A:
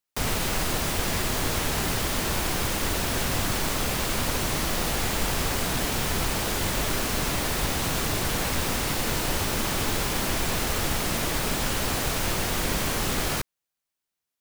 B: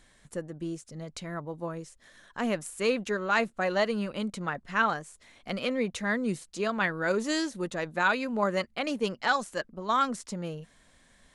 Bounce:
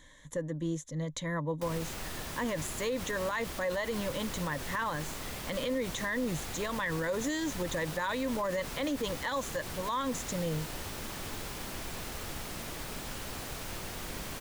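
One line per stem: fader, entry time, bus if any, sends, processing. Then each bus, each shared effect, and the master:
−13.5 dB, 1.45 s, no send, no processing
+1.0 dB, 0.00 s, no send, EQ curve with evenly spaced ripples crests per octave 1.1, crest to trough 13 dB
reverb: not used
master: brickwall limiter −24.5 dBFS, peak gain reduction 14 dB

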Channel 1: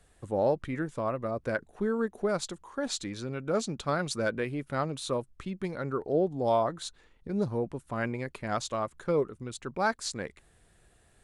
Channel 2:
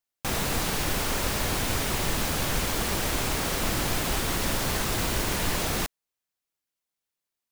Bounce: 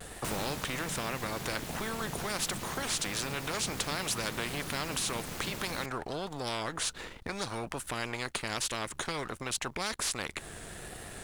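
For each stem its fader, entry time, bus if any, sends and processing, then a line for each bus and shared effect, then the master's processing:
−2.0 dB, 0.00 s, no send, every bin compressed towards the loudest bin 4 to 1
−4.5 dB, 0.00 s, no send, ring modulation 160 Hz; automatic ducking −11 dB, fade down 0.65 s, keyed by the first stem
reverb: not used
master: leveller curve on the samples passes 2; pitch vibrato 1.3 Hz 63 cents; downward compressor 1.5 to 1, threshold −36 dBFS, peak gain reduction 4.5 dB

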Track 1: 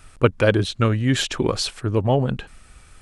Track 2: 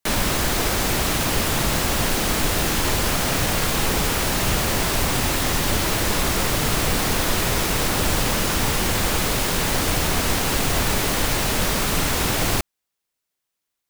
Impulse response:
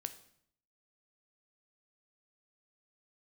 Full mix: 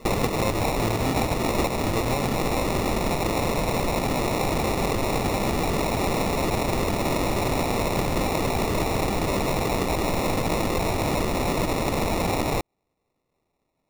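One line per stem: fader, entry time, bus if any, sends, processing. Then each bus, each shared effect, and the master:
−0.5 dB, 0.00 s, no send, no processing
−0.5 dB, 0.00 s, no send, low-pass filter 6,000 Hz 12 dB per octave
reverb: not used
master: parametric band 3,900 Hz +14.5 dB 1.9 octaves; decimation without filtering 28×; downward compressor, threshold −21 dBFS, peak gain reduction 13 dB

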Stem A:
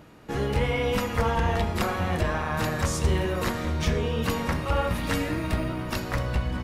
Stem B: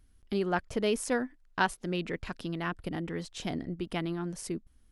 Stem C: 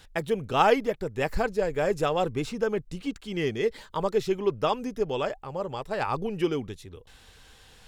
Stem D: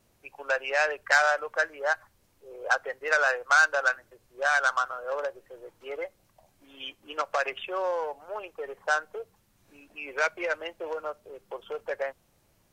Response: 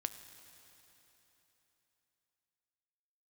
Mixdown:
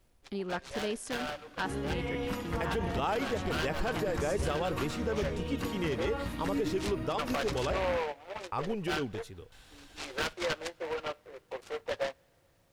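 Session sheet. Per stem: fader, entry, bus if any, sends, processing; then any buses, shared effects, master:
−10.5 dB, 1.35 s, no send, parametric band 290 Hz +11 dB 0.25 octaves
−7.5 dB, 0.00 s, send −15.5 dB, no processing
−3.0 dB, 2.45 s, muted 0:07.90–0:08.52, no send, no processing
−2.0 dB, 0.00 s, send −19 dB, notch comb filter 210 Hz; short delay modulated by noise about 1,300 Hz, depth 0.1 ms; automatic ducking −15 dB, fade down 0.50 s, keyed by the second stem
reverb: on, RT60 3.6 s, pre-delay 5 ms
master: brickwall limiter −22.5 dBFS, peak gain reduction 11.5 dB

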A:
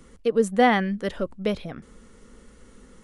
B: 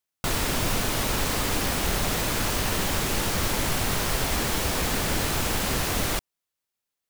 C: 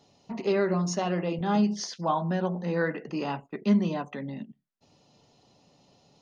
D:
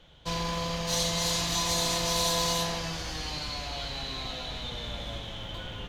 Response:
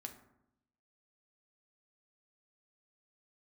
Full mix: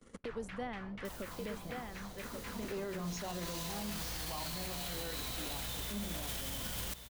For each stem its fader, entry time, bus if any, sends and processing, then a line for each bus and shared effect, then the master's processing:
−18.0 dB, 0.00 s, send −21 dB, echo send −5 dB, noise gate −47 dBFS, range −40 dB; multiband upward and downward compressor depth 100%
−11.0 dB, 0.00 s, send −7 dB, no echo send, guitar amp tone stack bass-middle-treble 5-5-5; auto-filter low-pass saw down 4.1 Hz 410–2,400 Hz
−10.5 dB, 2.25 s, no send, no echo send, no processing
−1.5 dB, 1.05 s, no send, echo send −16.5 dB, downward compressor, threshold −31 dBFS, peak gain reduction 7.5 dB; bit-depth reduction 6 bits, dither triangular; mains hum 60 Hz, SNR 12 dB; automatic ducking −22 dB, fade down 1.75 s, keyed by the first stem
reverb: on, RT60 0.80 s, pre-delay 4 ms
echo: single-tap delay 1,133 ms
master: brickwall limiter −31 dBFS, peak gain reduction 11 dB

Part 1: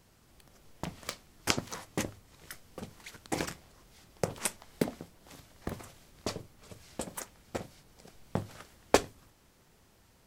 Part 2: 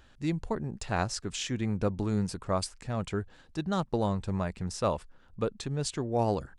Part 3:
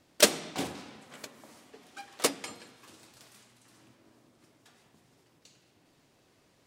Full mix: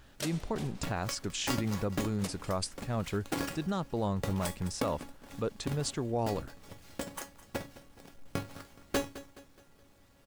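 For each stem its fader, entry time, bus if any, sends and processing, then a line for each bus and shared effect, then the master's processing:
−6.5 dB, 0.00 s, no send, echo send −17.5 dB, each half-wave held at its own peak; tuned comb filter 280 Hz, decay 0.2 s, harmonics all, mix 80%; sine wavefolder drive 8 dB, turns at −14.5 dBFS
−0.5 dB, 0.00 s, no send, no echo send, no processing
−10.5 dB, 0.00 s, no send, no echo send, no processing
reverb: not used
echo: repeating echo 211 ms, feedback 43%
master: brickwall limiter −22.5 dBFS, peak gain reduction 9 dB

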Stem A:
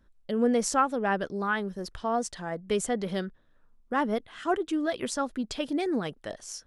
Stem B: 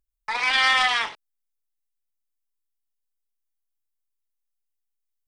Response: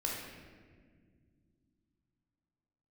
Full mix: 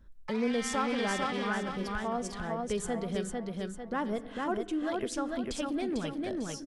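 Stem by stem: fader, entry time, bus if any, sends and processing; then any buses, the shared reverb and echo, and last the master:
−1.0 dB, 0.00 s, send −16.5 dB, echo send −3 dB, low-shelf EQ 160 Hz +9 dB
−7.5 dB, 0.00 s, no send, echo send −4 dB, automatic ducking −7 dB, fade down 0.70 s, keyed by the first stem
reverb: on, RT60 1.8 s, pre-delay 13 ms
echo: repeating echo 448 ms, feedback 35%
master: downward compressor 1.5 to 1, threshold −41 dBFS, peak gain reduction 8.5 dB

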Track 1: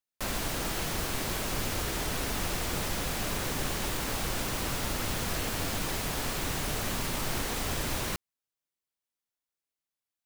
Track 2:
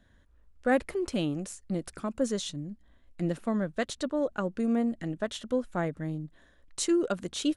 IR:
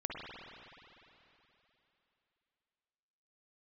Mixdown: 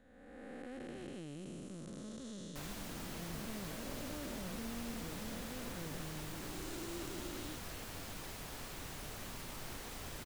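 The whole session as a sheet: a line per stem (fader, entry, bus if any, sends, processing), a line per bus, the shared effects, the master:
−14.5 dB, 2.35 s, no send, no processing
−4.5 dB, 0.00 s, no send, spectrum smeared in time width 732 ms; parametric band 620 Hz −4 dB 2.2 octaves; downward compressor, threshold −38 dBFS, peak gain reduction 6 dB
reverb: not used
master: no processing

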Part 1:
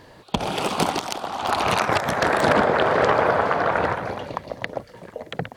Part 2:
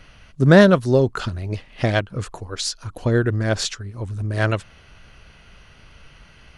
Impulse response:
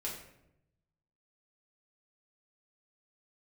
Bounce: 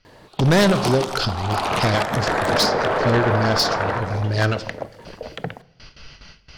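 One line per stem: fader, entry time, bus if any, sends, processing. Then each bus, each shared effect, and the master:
−0.5 dB, 0.05 s, send −15.5 dB, no processing
+2.0 dB, 0.00 s, send −12 dB, noise gate with hold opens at −36 dBFS; low-pass with resonance 5,000 Hz, resonance Q 5.4; every ending faded ahead of time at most 210 dB per second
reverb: on, RT60 0.80 s, pre-delay 5 ms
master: soft clipping −12 dBFS, distortion −7 dB

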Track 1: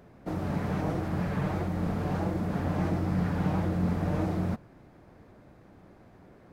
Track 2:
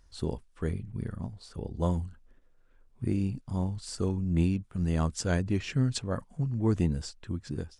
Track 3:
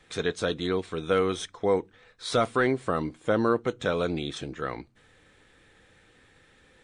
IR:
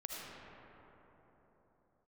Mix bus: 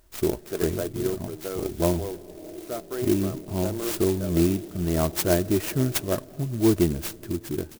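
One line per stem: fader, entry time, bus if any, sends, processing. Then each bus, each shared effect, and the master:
−12.0 dB, 1.60 s, no send, resonant band-pass 400 Hz, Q 2.6
−0.5 dB, 0.00 s, send −20.5 dB, high-shelf EQ 2,100 Hz +11 dB
−2.0 dB, 0.35 s, no send, automatic ducking −14 dB, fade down 1.80 s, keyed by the second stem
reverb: on, pre-delay 35 ms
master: hollow resonant body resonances 360/620 Hz, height 15 dB; converter with an unsteady clock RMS 0.08 ms

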